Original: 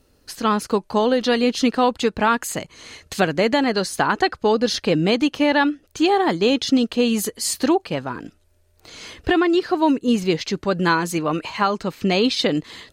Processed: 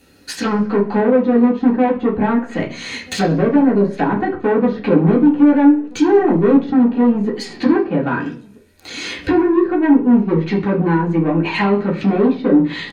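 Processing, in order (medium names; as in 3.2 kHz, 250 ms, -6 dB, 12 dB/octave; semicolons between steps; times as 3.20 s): low-pass that closes with the level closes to 590 Hz, closed at -18 dBFS; treble shelf 2.2 kHz +9 dB; band-stop 1.1 kHz, Q 12; saturation -18.5 dBFS, distortion -12 dB; doubling 30 ms -13.5 dB; echo from a far wall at 220 m, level -26 dB; reverberation RT60 0.45 s, pre-delay 3 ms, DRR -4.5 dB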